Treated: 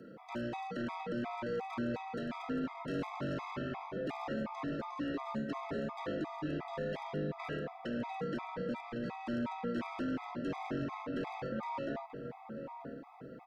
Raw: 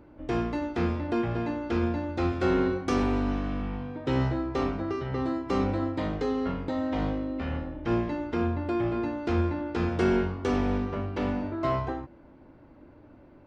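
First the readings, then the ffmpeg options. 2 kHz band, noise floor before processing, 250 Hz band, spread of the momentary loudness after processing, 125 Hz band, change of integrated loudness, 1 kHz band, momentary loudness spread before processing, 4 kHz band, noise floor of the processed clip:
−7.0 dB, −53 dBFS, −10.0 dB, 4 LU, −13.5 dB, −10.5 dB, −7.0 dB, 6 LU, −7.5 dB, −52 dBFS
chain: -filter_complex "[0:a]highpass=frequency=350:width=0.5412,highpass=frequency=350:width=1.3066,acrossover=split=3800[link_01][link_02];[link_02]acompressor=threshold=-59dB:ratio=4:attack=1:release=60[link_03];[link_01][link_03]amix=inputs=2:normalize=0,aecho=1:1:4.8:0.33,asplit=2[link_04][link_05];[link_05]acompressor=threshold=-43dB:ratio=6,volume=0.5dB[link_06];[link_04][link_06]amix=inputs=2:normalize=0,alimiter=level_in=2dB:limit=-24dB:level=0:latency=1:release=19,volume=-2dB,asoftclip=type=tanh:threshold=-32dB,afreqshift=-110,aeval=exprs='0.0355*(abs(mod(val(0)/0.0355+3,4)-2)-1)':channel_layout=same,asplit=2[link_07][link_08];[link_08]adelay=935,lowpass=frequency=1300:poles=1,volume=-8dB,asplit=2[link_09][link_10];[link_10]adelay=935,lowpass=frequency=1300:poles=1,volume=0.51,asplit=2[link_11][link_12];[link_12]adelay=935,lowpass=frequency=1300:poles=1,volume=0.51,asplit=2[link_13][link_14];[link_14]adelay=935,lowpass=frequency=1300:poles=1,volume=0.51,asplit=2[link_15][link_16];[link_16]adelay=935,lowpass=frequency=1300:poles=1,volume=0.51,asplit=2[link_17][link_18];[link_18]adelay=935,lowpass=frequency=1300:poles=1,volume=0.51[link_19];[link_07][link_09][link_11][link_13][link_15][link_17][link_19]amix=inputs=7:normalize=0,afftfilt=real='re*gt(sin(2*PI*2.8*pts/sr)*(1-2*mod(floor(b*sr/1024/650),2)),0)':imag='im*gt(sin(2*PI*2.8*pts/sr)*(1-2*mod(floor(b*sr/1024/650),2)),0)':win_size=1024:overlap=0.75,volume=1dB"

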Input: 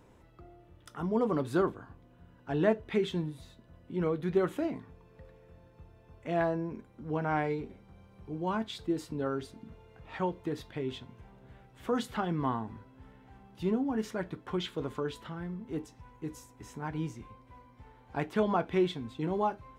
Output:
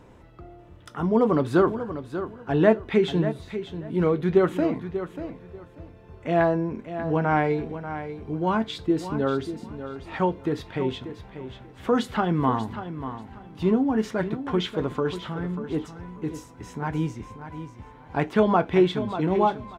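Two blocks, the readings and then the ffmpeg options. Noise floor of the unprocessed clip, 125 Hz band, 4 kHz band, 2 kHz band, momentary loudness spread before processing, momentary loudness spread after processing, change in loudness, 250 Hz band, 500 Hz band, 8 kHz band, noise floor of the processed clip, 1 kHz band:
−59 dBFS, +9.0 dB, +7.0 dB, +8.5 dB, 18 LU, 17 LU, +8.0 dB, +9.0 dB, +9.0 dB, can't be measured, −49 dBFS, +8.5 dB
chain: -filter_complex "[0:a]highshelf=frequency=6900:gain=-9,asplit=2[link_01][link_02];[link_02]aecho=0:1:589|1178|1767:0.282|0.0592|0.0124[link_03];[link_01][link_03]amix=inputs=2:normalize=0,volume=8.5dB"

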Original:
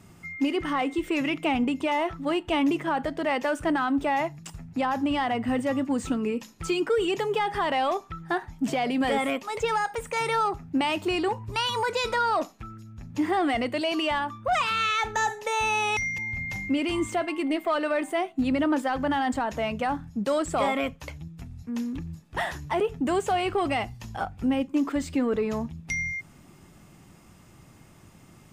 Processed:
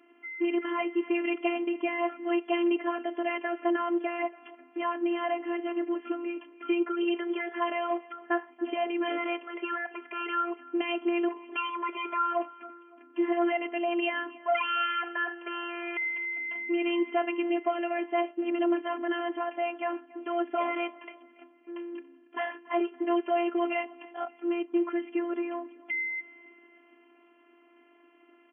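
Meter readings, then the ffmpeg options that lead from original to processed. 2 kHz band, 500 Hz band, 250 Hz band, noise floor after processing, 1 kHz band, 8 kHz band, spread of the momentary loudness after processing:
−3.5 dB, −2.5 dB, −3.5 dB, −60 dBFS, −5.5 dB, below −40 dB, 9 LU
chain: -af "aecho=1:1:282|564|846:0.0841|0.0362|0.0156,afftfilt=real='hypot(re,im)*cos(PI*b)':imag='0':win_size=512:overlap=0.75,afftfilt=real='re*between(b*sr/4096,240,3400)':imag='im*between(b*sr/4096,240,3400)':win_size=4096:overlap=0.75"

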